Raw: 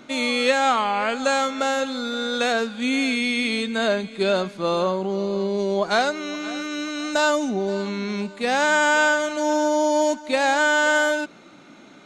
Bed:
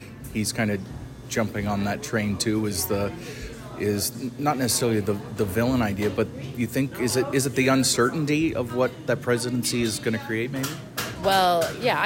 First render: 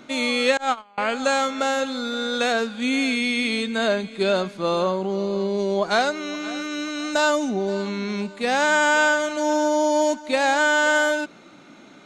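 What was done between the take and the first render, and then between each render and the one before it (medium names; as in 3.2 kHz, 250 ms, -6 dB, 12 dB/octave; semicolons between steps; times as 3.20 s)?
0.57–0.98 s: gate -19 dBFS, range -30 dB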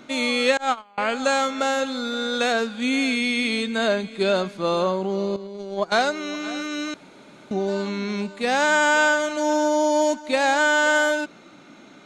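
5.36–5.92 s: gate -22 dBFS, range -12 dB; 6.94–7.51 s: room tone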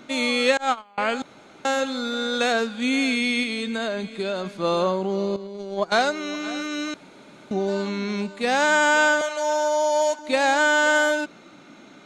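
1.22–1.65 s: room tone; 3.43–4.60 s: compression, threshold -23 dBFS; 9.21–10.19 s: high-pass 450 Hz 24 dB/octave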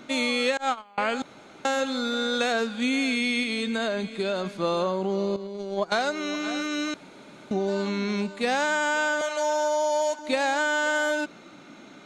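compression, threshold -21 dBFS, peak gain reduction 7 dB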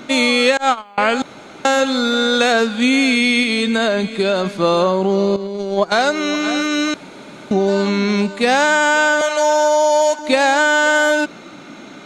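trim +10.5 dB; peak limiter -3 dBFS, peak gain reduction 3 dB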